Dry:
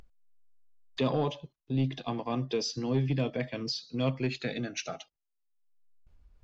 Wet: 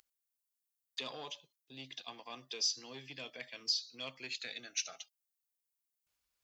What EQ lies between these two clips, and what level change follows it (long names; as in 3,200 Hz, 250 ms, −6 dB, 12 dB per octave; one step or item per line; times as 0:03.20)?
first difference
+5.0 dB